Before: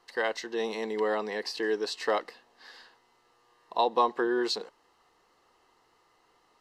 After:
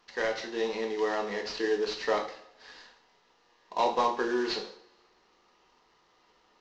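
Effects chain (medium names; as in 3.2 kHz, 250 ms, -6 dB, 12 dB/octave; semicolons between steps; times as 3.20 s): CVSD coder 32 kbps; two-slope reverb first 0.53 s, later 1.8 s, from -24 dB, DRR 2 dB; trim -2 dB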